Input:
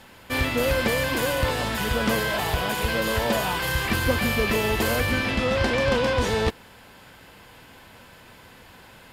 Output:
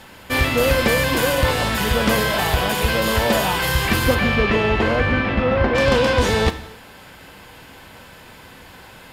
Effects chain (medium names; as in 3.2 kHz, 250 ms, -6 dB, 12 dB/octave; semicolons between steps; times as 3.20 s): 4.14–5.74 s: low-pass 3.8 kHz -> 1.7 kHz 12 dB/octave; gated-style reverb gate 310 ms falling, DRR 10.5 dB; trim +5.5 dB